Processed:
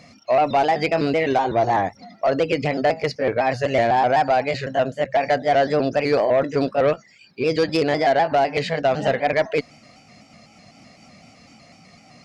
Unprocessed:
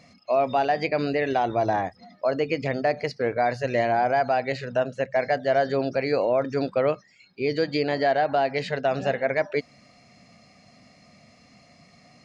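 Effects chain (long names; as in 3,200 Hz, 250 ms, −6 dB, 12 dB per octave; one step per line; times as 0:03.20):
pitch shifter gated in a rhythm +1.5 semitones, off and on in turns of 126 ms
sine wavefolder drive 3 dB, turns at −12 dBFS
harmonic generator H 3 −27 dB, 5 −39 dB, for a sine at −11.5 dBFS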